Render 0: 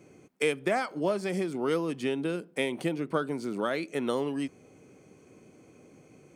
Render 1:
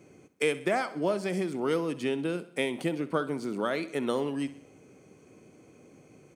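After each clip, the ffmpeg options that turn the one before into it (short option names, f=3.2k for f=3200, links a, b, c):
-af "aecho=1:1:64|128|192|256|320:0.158|0.0824|0.0429|0.0223|0.0116"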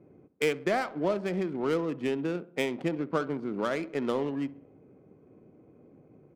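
-af "adynamicsmooth=sensitivity=5:basefreq=900"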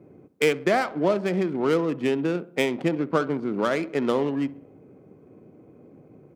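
-af "highpass=63,volume=6dB"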